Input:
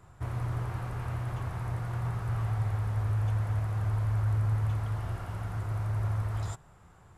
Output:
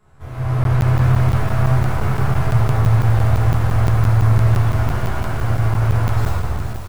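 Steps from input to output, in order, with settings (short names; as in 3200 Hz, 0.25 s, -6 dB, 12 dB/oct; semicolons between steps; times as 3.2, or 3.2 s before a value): tracing distortion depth 0.15 ms; shoebox room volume 180 m³, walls hard, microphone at 1.3 m; speed mistake 24 fps film run at 25 fps; notches 60/120/180 Hz; resonator 130 Hz, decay 1.8 s, mix 70%; AGC gain up to 10.5 dB; doubler 14 ms -7.5 dB; crackling interface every 0.17 s, samples 512, zero, from 0.64; lo-fi delay 0.481 s, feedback 35%, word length 6-bit, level -11 dB; gain +5 dB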